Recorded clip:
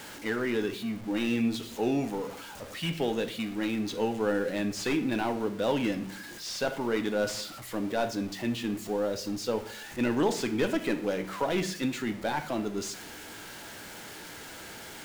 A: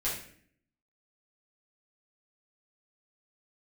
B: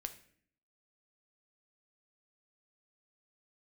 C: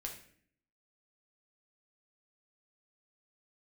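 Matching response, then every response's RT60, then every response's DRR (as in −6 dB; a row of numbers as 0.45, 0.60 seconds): B; 0.55, 0.55, 0.55 seconds; −9.5, 7.5, 0.0 decibels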